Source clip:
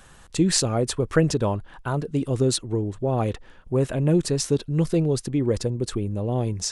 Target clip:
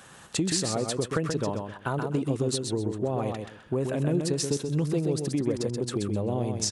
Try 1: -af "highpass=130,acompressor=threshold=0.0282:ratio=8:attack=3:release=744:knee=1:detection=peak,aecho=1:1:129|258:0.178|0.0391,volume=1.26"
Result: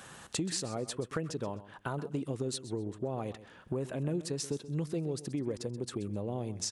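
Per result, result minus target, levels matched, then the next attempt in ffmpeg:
compression: peak gain reduction +7 dB; echo-to-direct -10 dB
-af "highpass=130,acompressor=threshold=0.0708:ratio=8:attack=3:release=744:knee=1:detection=peak,aecho=1:1:129|258:0.178|0.0391,volume=1.26"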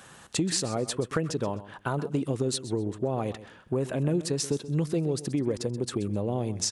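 echo-to-direct -10 dB
-af "highpass=130,acompressor=threshold=0.0708:ratio=8:attack=3:release=744:knee=1:detection=peak,aecho=1:1:129|258|387:0.562|0.124|0.0272,volume=1.26"

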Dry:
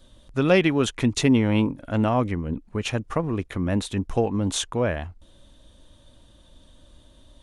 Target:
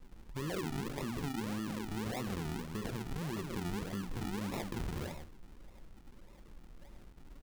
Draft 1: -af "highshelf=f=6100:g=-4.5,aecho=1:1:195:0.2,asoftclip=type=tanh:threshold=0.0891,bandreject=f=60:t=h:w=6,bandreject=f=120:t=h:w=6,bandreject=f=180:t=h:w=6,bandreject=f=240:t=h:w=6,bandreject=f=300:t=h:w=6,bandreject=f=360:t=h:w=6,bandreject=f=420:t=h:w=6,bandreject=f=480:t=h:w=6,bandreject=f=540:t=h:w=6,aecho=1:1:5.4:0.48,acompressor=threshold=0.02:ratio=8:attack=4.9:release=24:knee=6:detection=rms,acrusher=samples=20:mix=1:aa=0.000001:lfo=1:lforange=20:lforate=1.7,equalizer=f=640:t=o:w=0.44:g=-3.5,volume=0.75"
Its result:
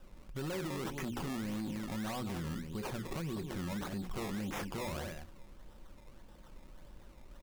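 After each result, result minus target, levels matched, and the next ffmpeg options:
decimation with a swept rate: distortion -8 dB; saturation: distortion +8 dB
-af "highshelf=f=6100:g=-4.5,aecho=1:1:195:0.2,asoftclip=type=tanh:threshold=0.0891,bandreject=f=60:t=h:w=6,bandreject=f=120:t=h:w=6,bandreject=f=180:t=h:w=6,bandreject=f=240:t=h:w=6,bandreject=f=300:t=h:w=6,bandreject=f=360:t=h:w=6,bandreject=f=420:t=h:w=6,bandreject=f=480:t=h:w=6,bandreject=f=540:t=h:w=6,aecho=1:1:5.4:0.48,acompressor=threshold=0.02:ratio=8:attack=4.9:release=24:knee=6:detection=rms,acrusher=samples=56:mix=1:aa=0.000001:lfo=1:lforange=56:lforate=1.7,equalizer=f=640:t=o:w=0.44:g=-3.5,volume=0.75"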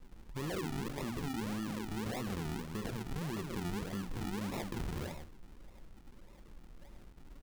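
saturation: distortion +8 dB
-af "highshelf=f=6100:g=-4.5,aecho=1:1:195:0.2,asoftclip=type=tanh:threshold=0.211,bandreject=f=60:t=h:w=6,bandreject=f=120:t=h:w=6,bandreject=f=180:t=h:w=6,bandreject=f=240:t=h:w=6,bandreject=f=300:t=h:w=6,bandreject=f=360:t=h:w=6,bandreject=f=420:t=h:w=6,bandreject=f=480:t=h:w=6,bandreject=f=540:t=h:w=6,aecho=1:1:5.4:0.48,acompressor=threshold=0.02:ratio=8:attack=4.9:release=24:knee=6:detection=rms,acrusher=samples=56:mix=1:aa=0.000001:lfo=1:lforange=56:lforate=1.7,equalizer=f=640:t=o:w=0.44:g=-3.5,volume=0.75"

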